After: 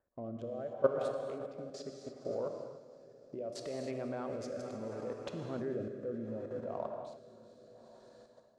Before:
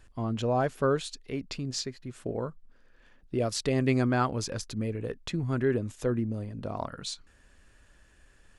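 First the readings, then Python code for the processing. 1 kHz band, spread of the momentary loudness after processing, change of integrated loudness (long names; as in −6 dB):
−11.5 dB, 20 LU, −9.0 dB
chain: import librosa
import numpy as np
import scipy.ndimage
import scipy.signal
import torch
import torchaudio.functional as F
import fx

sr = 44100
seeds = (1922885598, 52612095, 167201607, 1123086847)

y = fx.wiener(x, sr, points=15)
y = fx.peak_eq(y, sr, hz=580.0, db=12.0, octaves=0.46)
y = fx.echo_diffused(y, sr, ms=452, feedback_pct=55, wet_db=-11.5)
y = fx.level_steps(y, sr, step_db=17)
y = fx.highpass(y, sr, hz=410.0, slope=6)
y = fx.rider(y, sr, range_db=10, speed_s=2.0)
y = fx.high_shelf(y, sr, hz=2300.0, db=-11.0)
y = fx.rev_gated(y, sr, seeds[0], gate_ms=330, shape='flat', drr_db=4.0)
y = fx.rotary(y, sr, hz=0.7)
y = y * 10.0 ** (-1.0 / 20.0)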